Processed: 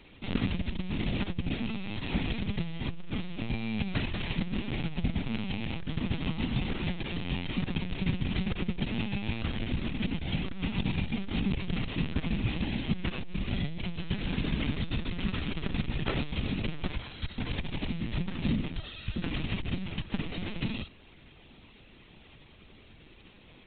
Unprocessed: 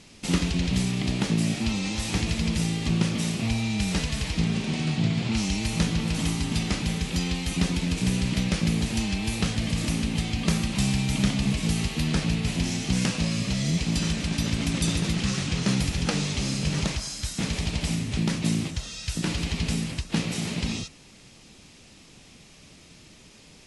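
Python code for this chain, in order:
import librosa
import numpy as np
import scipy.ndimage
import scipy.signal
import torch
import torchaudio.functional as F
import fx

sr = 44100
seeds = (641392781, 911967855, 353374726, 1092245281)

y = fx.lpc_vocoder(x, sr, seeds[0], excitation='pitch_kept', order=16)
y = fx.transformer_sat(y, sr, knee_hz=150.0)
y = y * 10.0 ** (-2.0 / 20.0)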